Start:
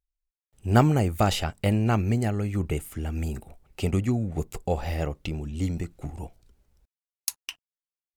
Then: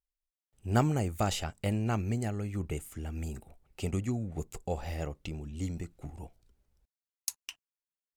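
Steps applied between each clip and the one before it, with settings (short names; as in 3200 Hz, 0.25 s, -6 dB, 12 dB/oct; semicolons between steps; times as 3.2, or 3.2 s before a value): dynamic EQ 7100 Hz, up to +6 dB, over -56 dBFS, Q 1.9; gain -7.5 dB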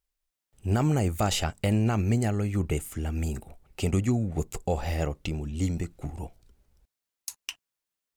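limiter -23 dBFS, peak gain reduction 10.5 dB; gain +7.5 dB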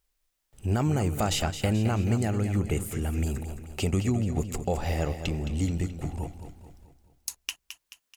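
compressor 1.5:1, threshold -44 dBFS, peak gain reduction 8.5 dB; on a send: feedback echo 0.216 s, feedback 47%, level -10 dB; on the sum: gain +7 dB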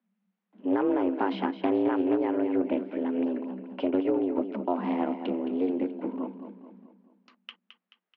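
frequency shift +180 Hz; Gaussian blur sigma 3.5 samples; Doppler distortion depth 0.13 ms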